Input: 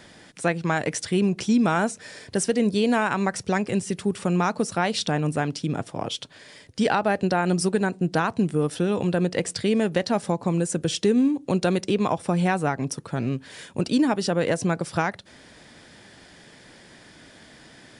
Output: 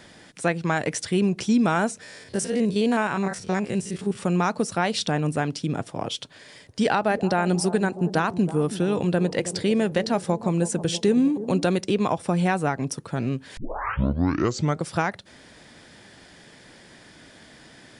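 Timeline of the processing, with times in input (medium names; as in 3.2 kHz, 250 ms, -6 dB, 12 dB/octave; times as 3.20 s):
2.03–4.19 s: spectrogram pixelated in time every 50 ms
6.19–11.66 s: bucket-brigade echo 323 ms, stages 2048, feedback 51%, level -13 dB
13.57 s: tape start 1.29 s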